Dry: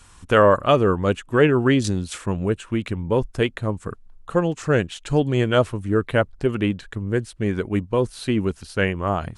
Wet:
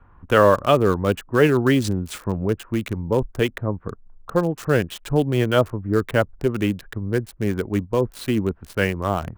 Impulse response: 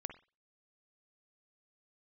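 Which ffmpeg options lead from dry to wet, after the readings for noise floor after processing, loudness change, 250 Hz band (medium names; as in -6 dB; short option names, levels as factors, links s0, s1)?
-51 dBFS, 0.0 dB, 0.0 dB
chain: -filter_complex "[0:a]equalizer=f=6400:w=1.6:g=-3,acrossover=split=280|1600[s0][s1][s2];[s2]acrusher=bits=5:mix=0:aa=0.000001[s3];[s0][s1][s3]amix=inputs=3:normalize=0"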